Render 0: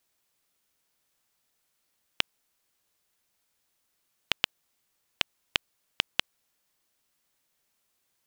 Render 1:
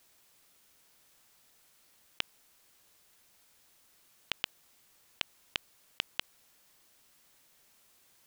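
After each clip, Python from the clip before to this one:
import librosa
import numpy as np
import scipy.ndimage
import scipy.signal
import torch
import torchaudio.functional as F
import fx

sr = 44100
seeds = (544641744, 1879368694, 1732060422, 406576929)

y = fx.over_compress(x, sr, threshold_db=-34.0, ratio=-1.0)
y = y * 10.0 ** (1.5 / 20.0)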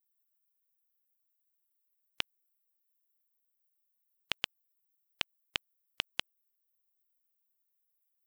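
y = fx.bin_expand(x, sr, power=3.0)
y = y * 10.0 ** (4.0 / 20.0)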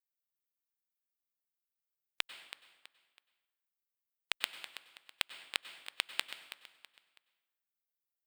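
y = fx.cheby_harmonics(x, sr, harmonics=(4, 7), levels_db=(-22, -15), full_scale_db=-8.0)
y = fx.echo_feedback(y, sr, ms=326, feedback_pct=34, wet_db=-13)
y = fx.rev_plate(y, sr, seeds[0], rt60_s=1.1, hf_ratio=0.75, predelay_ms=85, drr_db=12.0)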